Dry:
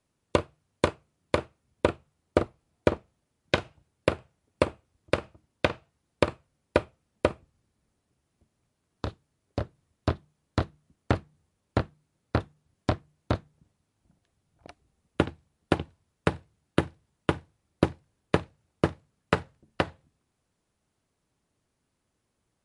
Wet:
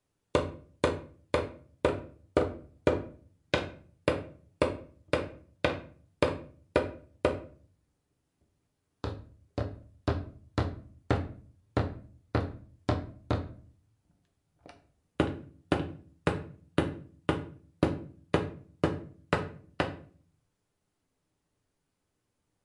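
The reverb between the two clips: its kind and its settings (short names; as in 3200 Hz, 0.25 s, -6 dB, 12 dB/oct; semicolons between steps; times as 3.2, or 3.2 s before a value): shoebox room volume 39 m³, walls mixed, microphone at 0.39 m; gain -4.5 dB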